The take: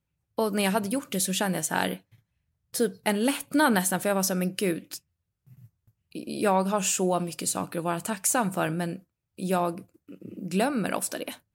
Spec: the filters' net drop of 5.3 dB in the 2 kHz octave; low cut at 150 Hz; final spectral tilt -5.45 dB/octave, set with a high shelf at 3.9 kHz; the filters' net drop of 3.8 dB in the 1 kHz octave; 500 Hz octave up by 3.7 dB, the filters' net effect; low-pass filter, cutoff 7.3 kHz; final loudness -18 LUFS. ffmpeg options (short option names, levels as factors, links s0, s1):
-af "highpass=150,lowpass=7300,equalizer=f=500:t=o:g=7,equalizer=f=1000:t=o:g=-7.5,equalizer=f=2000:t=o:g=-3,highshelf=f=3900:g=-7,volume=2.99"